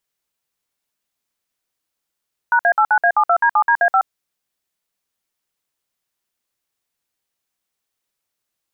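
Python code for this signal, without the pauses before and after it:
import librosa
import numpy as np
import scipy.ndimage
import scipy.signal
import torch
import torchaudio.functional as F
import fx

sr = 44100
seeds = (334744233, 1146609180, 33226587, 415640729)

y = fx.dtmf(sr, digits='#A89A72D7DA5', tone_ms=72, gap_ms=57, level_db=-13.5)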